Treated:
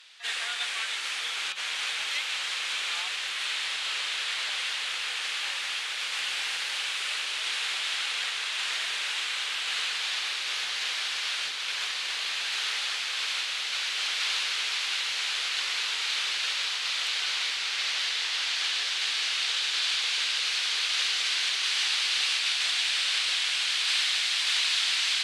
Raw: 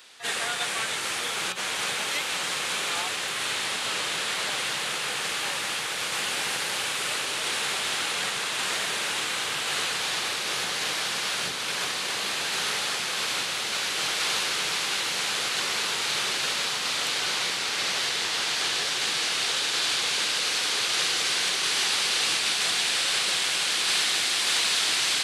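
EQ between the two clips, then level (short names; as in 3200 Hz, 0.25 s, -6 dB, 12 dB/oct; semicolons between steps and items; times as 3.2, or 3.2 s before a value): band-pass 3000 Hz, Q 0.87; 0.0 dB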